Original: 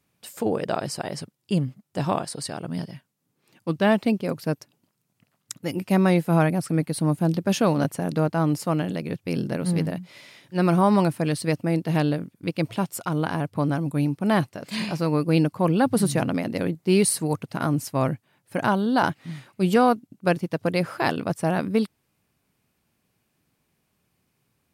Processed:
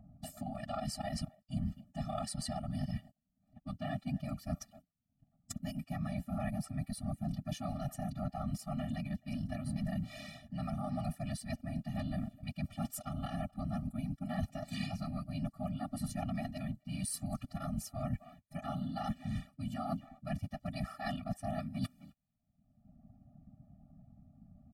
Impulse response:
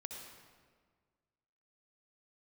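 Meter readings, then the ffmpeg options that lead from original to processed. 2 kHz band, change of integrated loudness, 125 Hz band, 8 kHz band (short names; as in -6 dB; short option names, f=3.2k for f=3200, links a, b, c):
-19.0 dB, -15.5 dB, -13.0 dB, -14.0 dB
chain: -filter_complex "[0:a]asplit=2[a][b];[b]adelay=260,highpass=300,lowpass=3.4k,asoftclip=type=hard:threshold=-16dB,volume=-28dB[c];[a][c]amix=inputs=2:normalize=0,agate=range=-26dB:threshold=-54dB:ratio=16:detection=peak,acrossover=split=650[d][e];[d]acompressor=mode=upward:threshold=-25dB:ratio=2.5[f];[f][e]amix=inputs=2:normalize=0,afftfilt=real='hypot(re,im)*cos(2*PI*random(0))':imag='hypot(re,im)*sin(2*PI*random(1))':win_size=512:overlap=0.75,areverse,acompressor=threshold=-39dB:ratio=12,areverse,afftfilt=real='re*eq(mod(floor(b*sr/1024/280),2),0)':imag='im*eq(mod(floor(b*sr/1024/280),2),0)':win_size=1024:overlap=0.75,volume=6.5dB"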